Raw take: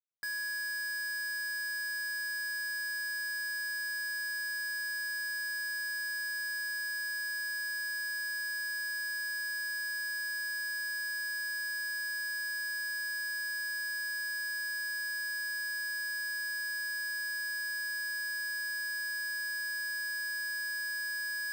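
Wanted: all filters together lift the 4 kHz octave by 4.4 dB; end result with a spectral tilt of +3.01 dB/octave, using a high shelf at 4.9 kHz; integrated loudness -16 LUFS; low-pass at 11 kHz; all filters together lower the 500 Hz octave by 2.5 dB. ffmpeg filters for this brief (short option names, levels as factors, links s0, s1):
-af "lowpass=11000,equalizer=f=500:t=o:g=-4,equalizer=f=4000:t=o:g=3.5,highshelf=f=4900:g=4,volume=7.08"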